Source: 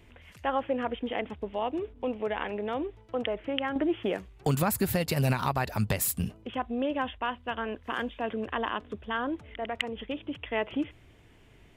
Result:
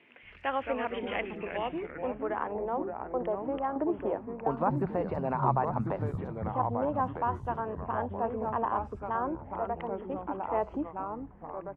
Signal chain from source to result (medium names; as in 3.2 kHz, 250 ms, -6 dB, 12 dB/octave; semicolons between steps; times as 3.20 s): three bands offset in time mids, highs, lows 60/230 ms, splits 180/4600 Hz; ever faster or slower copies 134 ms, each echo -3 st, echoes 3, each echo -6 dB; low-pass sweep 2.5 kHz -> 950 Hz, 1.78–2.56 s; trim -3.5 dB